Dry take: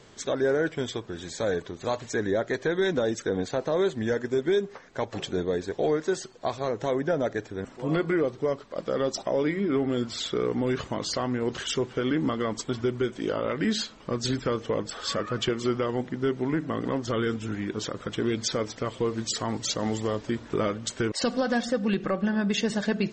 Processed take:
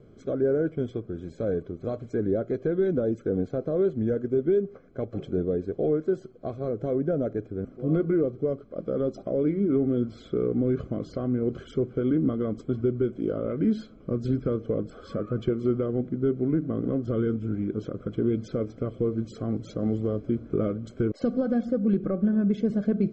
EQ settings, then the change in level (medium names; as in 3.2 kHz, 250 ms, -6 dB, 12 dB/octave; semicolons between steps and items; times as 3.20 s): boxcar filter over 48 samples; +4.0 dB